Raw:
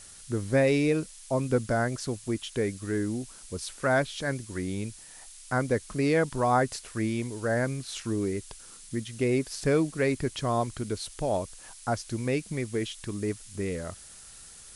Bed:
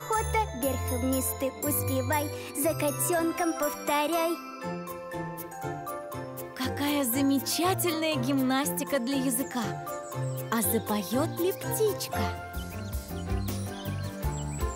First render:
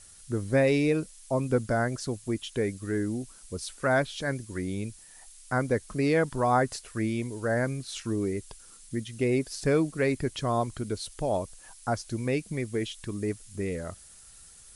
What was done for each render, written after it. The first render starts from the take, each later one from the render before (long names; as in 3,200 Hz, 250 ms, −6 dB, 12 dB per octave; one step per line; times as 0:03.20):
broadband denoise 6 dB, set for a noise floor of −49 dBFS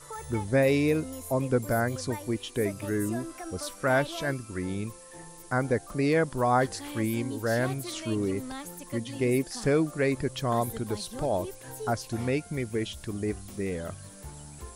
mix in bed −12.5 dB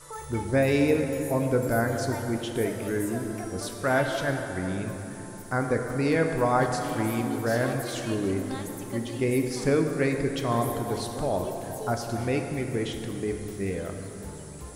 dense smooth reverb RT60 3.6 s, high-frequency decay 0.5×, DRR 3.5 dB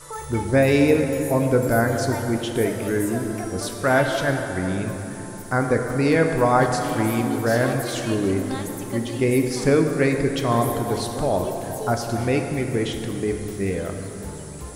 level +5.5 dB